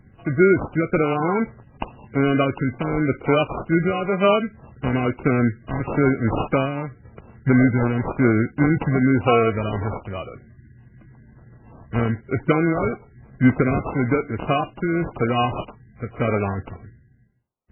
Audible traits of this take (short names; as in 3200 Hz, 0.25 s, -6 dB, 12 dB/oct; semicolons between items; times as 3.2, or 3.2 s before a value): phasing stages 2, 0.99 Hz, lowest notch 730–2100 Hz; aliases and images of a low sample rate 1800 Hz, jitter 0%; MP3